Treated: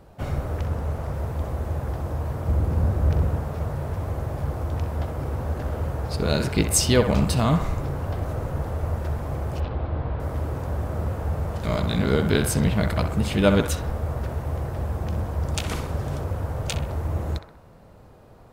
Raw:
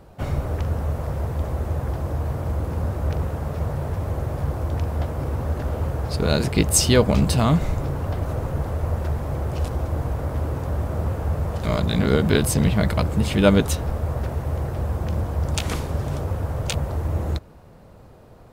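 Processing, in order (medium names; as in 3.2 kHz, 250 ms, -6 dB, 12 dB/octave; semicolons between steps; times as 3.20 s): 2.48–3.41 s: bass shelf 330 Hz +6.5 dB; 9.60–10.20 s: steep low-pass 4.1 kHz 36 dB/octave; on a send: band-passed feedback delay 64 ms, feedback 61%, band-pass 1.2 kHz, level -6 dB; 0.66–1.14 s: on the sum: loudspeaker Doppler distortion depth 0.42 ms; trim -2.5 dB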